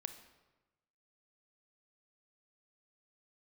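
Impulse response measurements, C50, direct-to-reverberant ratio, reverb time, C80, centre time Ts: 10.0 dB, 8.5 dB, 1.1 s, 13.0 dB, 12 ms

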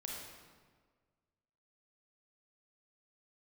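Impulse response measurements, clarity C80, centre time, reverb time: 2.0 dB, 85 ms, 1.6 s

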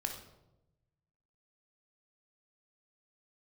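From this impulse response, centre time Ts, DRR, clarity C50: 23 ms, 3.5 dB, 6.5 dB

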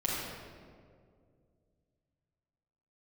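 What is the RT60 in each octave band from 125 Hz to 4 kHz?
3.2 s, 2.7 s, 2.5 s, 1.8 s, 1.4 s, 1.1 s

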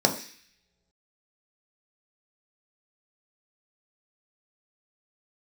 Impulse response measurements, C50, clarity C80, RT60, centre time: 11.0 dB, 14.0 dB, no single decay rate, 14 ms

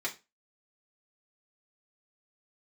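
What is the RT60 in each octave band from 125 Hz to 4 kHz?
0.30 s, 0.30 s, 0.25 s, 0.25 s, 0.25 s, 0.25 s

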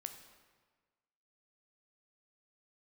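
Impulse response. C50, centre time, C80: 8.5 dB, 21 ms, 10.0 dB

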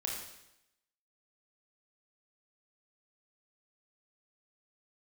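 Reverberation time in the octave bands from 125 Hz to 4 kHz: 0.85 s, 0.90 s, 0.85 s, 0.85 s, 0.85 s, 0.85 s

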